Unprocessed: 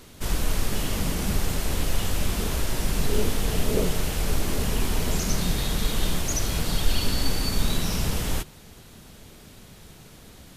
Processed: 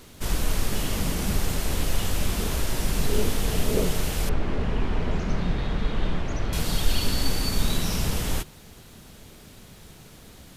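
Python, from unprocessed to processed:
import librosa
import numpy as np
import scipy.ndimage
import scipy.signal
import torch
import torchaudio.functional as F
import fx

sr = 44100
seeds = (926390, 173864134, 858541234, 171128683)

y = fx.quant_dither(x, sr, seeds[0], bits=12, dither='triangular')
y = fx.lowpass(y, sr, hz=2200.0, slope=12, at=(4.29, 6.53))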